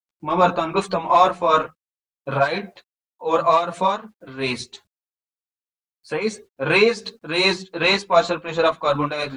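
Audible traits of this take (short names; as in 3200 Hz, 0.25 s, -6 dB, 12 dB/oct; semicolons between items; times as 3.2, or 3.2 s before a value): a quantiser's noise floor 12-bit, dither none; tremolo triangle 2.7 Hz, depth 65%; a shimmering, thickened sound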